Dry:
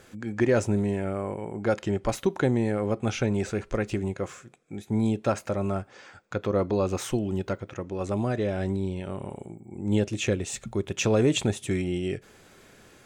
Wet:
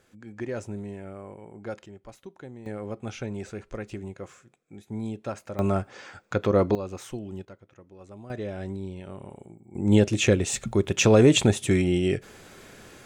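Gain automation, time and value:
-10.5 dB
from 1.86 s -19 dB
from 2.66 s -8 dB
from 5.59 s +4 dB
from 6.75 s -8.5 dB
from 7.45 s -17 dB
from 8.3 s -6 dB
from 9.75 s +5.5 dB

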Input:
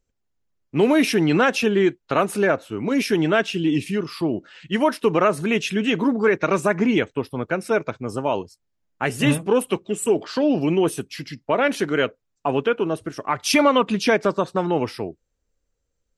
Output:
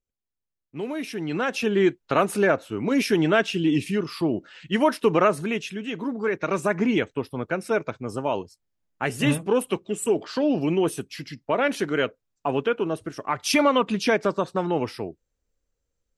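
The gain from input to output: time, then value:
1.08 s -13.5 dB
1.86 s -1 dB
5.26 s -1 dB
5.82 s -11 dB
6.74 s -3 dB

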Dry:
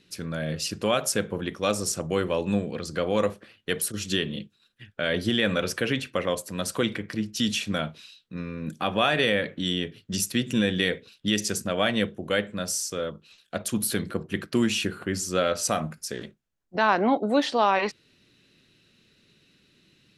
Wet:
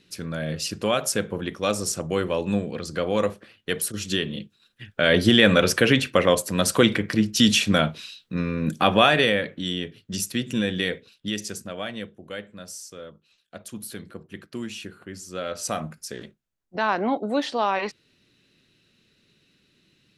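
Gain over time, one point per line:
4.4 s +1 dB
5.14 s +8 dB
8.89 s +8 dB
9.53 s -1 dB
10.93 s -1 dB
12.07 s -10 dB
15.24 s -10 dB
15.74 s -2 dB

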